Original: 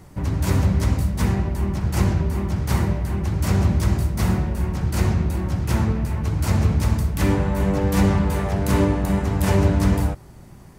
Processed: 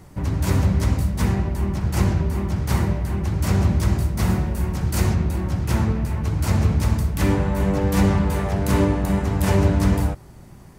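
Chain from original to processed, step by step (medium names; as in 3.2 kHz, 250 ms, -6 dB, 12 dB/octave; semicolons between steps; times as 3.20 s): 4.28–5.14 s: treble shelf 9.5 kHz -> 5 kHz +6.5 dB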